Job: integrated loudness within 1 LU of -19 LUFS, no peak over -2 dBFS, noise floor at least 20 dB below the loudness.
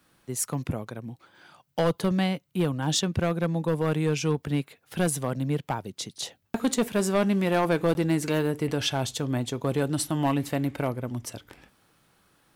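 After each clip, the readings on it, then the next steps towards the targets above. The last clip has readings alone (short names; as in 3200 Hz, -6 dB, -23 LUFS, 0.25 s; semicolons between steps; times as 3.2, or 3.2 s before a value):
clipped 0.8%; flat tops at -17.0 dBFS; dropouts 1; longest dropout 11 ms; loudness -27.5 LUFS; peak -17.0 dBFS; loudness target -19.0 LUFS
-> clip repair -17 dBFS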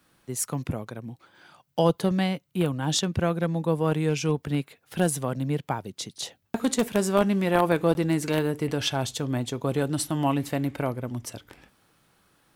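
clipped 0.0%; dropouts 1; longest dropout 11 ms
-> interpolate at 7.94, 11 ms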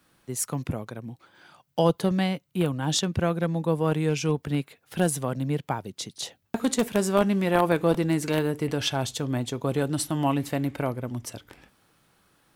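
dropouts 0; loudness -26.5 LUFS; peak -8.0 dBFS; loudness target -19.0 LUFS
-> gain +7.5 dB; limiter -2 dBFS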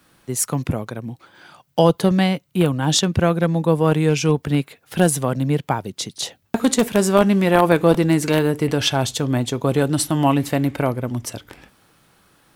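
loudness -19.5 LUFS; peak -2.0 dBFS; noise floor -61 dBFS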